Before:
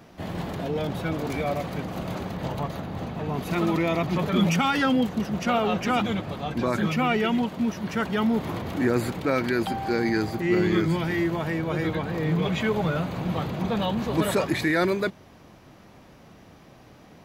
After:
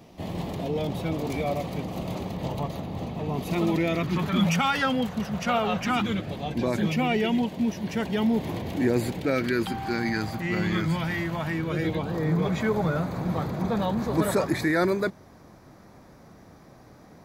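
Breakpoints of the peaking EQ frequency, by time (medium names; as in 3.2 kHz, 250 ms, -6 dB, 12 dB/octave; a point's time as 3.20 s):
peaking EQ -12 dB 0.53 oct
3.66 s 1.5 kHz
4.54 s 320 Hz
5.73 s 320 Hz
6.36 s 1.3 kHz
9.13 s 1.3 kHz
10.12 s 380 Hz
11.41 s 380 Hz
12.24 s 2.9 kHz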